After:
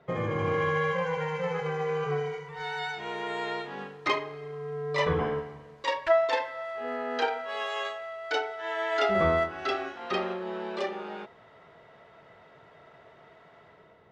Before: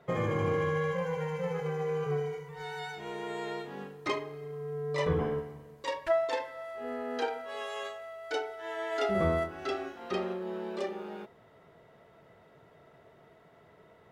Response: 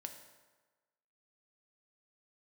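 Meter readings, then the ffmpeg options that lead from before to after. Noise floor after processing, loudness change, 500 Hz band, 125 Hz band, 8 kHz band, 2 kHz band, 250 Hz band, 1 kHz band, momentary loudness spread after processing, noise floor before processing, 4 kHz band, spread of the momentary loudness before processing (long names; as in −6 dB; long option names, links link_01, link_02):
−56 dBFS, +4.0 dB, +3.0 dB, 0.0 dB, can't be measured, +7.0 dB, +0.5 dB, +6.0 dB, 11 LU, −59 dBFS, +6.5 dB, 11 LU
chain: -filter_complex "[0:a]acrossover=split=660[link_01][link_02];[link_02]dynaudnorm=framelen=110:gausssize=9:maxgain=7.5dB[link_03];[link_01][link_03]amix=inputs=2:normalize=0,lowpass=5000"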